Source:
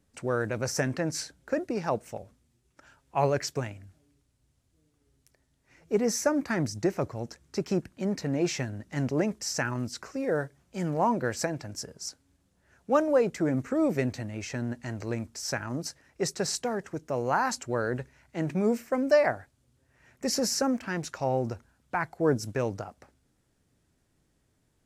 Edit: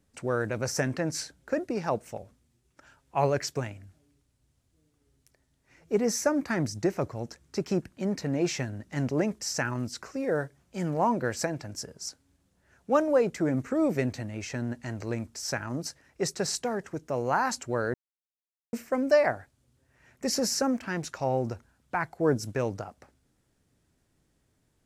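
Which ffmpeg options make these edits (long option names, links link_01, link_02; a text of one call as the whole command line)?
ffmpeg -i in.wav -filter_complex "[0:a]asplit=3[link_01][link_02][link_03];[link_01]atrim=end=17.94,asetpts=PTS-STARTPTS,afade=type=out:start_time=17.936:duration=0.004:curve=hsin[link_04];[link_02]atrim=start=17.94:end=18.73,asetpts=PTS-STARTPTS,volume=0[link_05];[link_03]atrim=start=18.73,asetpts=PTS-STARTPTS,afade=type=in:duration=0.004:curve=hsin[link_06];[link_04][link_05][link_06]concat=n=3:v=0:a=1" out.wav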